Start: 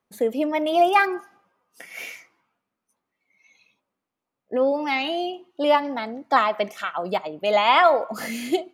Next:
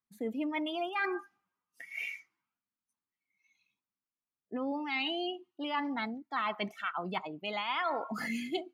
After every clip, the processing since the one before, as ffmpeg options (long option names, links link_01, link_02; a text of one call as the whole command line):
ffmpeg -i in.wav -af "afftdn=noise_reduction=15:noise_floor=-35,equalizer=frequency=550:width_type=o:width=0.94:gain=-15,areverse,acompressor=threshold=-31dB:ratio=6,areverse" out.wav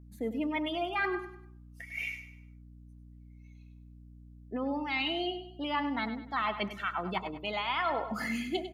ffmpeg -i in.wav -filter_complex "[0:a]asplit=2[link_01][link_02];[link_02]aecho=0:1:99|198|297|396:0.266|0.101|0.0384|0.0146[link_03];[link_01][link_03]amix=inputs=2:normalize=0,aeval=exprs='val(0)+0.00251*(sin(2*PI*60*n/s)+sin(2*PI*2*60*n/s)/2+sin(2*PI*3*60*n/s)/3+sin(2*PI*4*60*n/s)/4+sin(2*PI*5*60*n/s)/5)':channel_layout=same,volume=1.5dB" out.wav